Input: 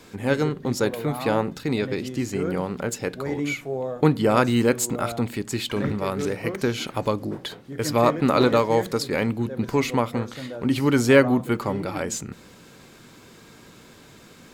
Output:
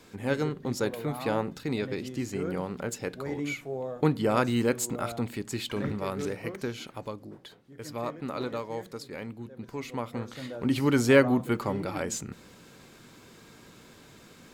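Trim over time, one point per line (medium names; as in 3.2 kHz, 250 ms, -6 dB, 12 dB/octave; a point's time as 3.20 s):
6.25 s -6 dB
7.24 s -15 dB
9.77 s -15 dB
10.44 s -4 dB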